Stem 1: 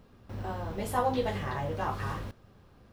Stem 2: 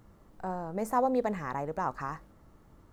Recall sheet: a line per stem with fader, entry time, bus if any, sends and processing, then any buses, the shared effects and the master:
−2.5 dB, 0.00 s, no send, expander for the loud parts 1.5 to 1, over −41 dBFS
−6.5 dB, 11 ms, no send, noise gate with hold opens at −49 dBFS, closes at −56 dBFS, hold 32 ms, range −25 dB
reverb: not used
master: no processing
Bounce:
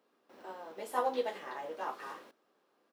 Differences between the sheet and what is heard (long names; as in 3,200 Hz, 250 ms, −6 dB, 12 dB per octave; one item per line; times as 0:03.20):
stem 2 −6.5 dB → −17.5 dB
master: extra high-pass filter 310 Hz 24 dB per octave